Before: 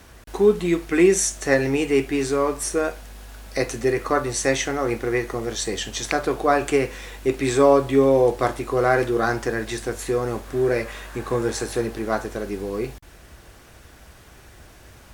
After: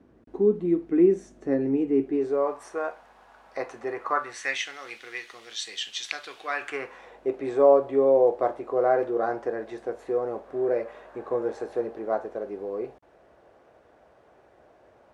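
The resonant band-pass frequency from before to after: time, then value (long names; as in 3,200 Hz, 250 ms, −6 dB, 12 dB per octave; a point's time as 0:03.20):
resonant band-pass, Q 1.8
0:02.00 280 Hz
0:02.61 910 Hz
0:04.04 910 Hz
0:04.71 3,300 Hz
0:06.35 3,300 Hz
0:07.17 590 Hz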